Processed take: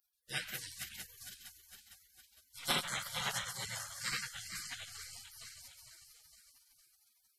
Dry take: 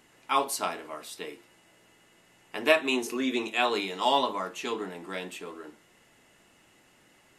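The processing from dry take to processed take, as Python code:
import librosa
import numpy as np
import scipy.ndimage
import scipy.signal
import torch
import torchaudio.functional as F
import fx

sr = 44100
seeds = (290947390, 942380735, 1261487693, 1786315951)

y = fx.reverse_delay_fb(x, sr, ms=229, feedback_pct=74, wet_db=-7.0)
y = fx.spec_gate(y, sr, threshold_db=-30, keep='weak')
y = fx.bass_treble(y, sr, bass_db=0, treble_db=-6)
y = F.gain(torch.from_numpy(y), 11.0).numpy()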